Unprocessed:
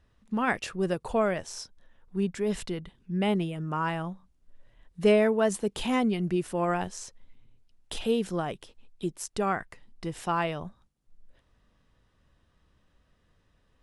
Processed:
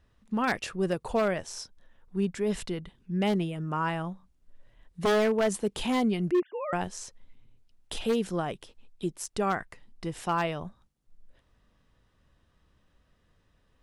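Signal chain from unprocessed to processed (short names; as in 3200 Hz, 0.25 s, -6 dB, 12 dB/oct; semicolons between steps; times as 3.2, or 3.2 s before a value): 6.31–6.73 sine-wave speech; wavefolder -18.5 dBFS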